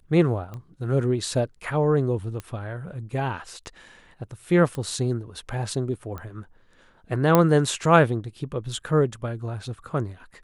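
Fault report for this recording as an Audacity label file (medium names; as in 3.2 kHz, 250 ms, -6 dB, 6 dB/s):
0.540000	0.540000	pop -25 dBFS
2.400000	2.400000	pop -20 dBFS
4.750000	4.750000	pop -20 dBFS
6.180000	6.180000	pop -22 dBFS
7.350000	7.350000	pop -4 dBFS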